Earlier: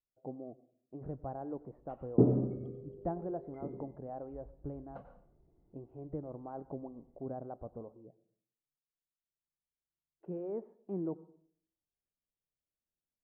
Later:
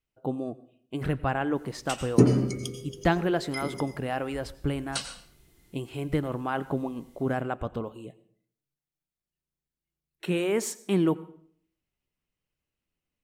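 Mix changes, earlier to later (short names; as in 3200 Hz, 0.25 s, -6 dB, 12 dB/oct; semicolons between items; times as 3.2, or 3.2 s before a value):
speech +7.0 dB; master: remove ladder low-pass 850 Hz, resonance 35%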